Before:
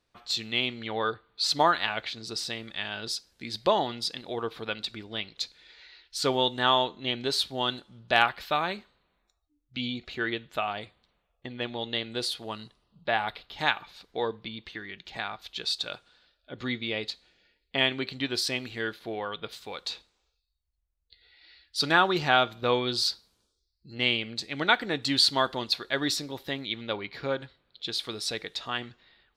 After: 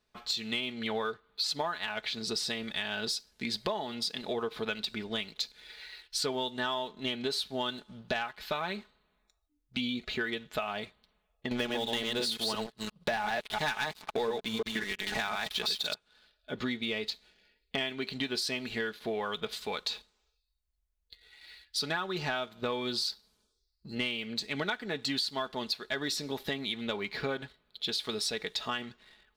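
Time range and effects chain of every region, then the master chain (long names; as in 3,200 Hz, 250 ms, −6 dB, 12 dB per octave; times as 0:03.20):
0:11.51–0:15.94: delay that plays each chunk backwards 173 ms, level −3 dB + leveller curve on the samples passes 3
whole clip: comb filter 4.7 ms, depth 50%; downward compressor 10 to 1, threshold −33 dBFS; leveller curve on the samples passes 1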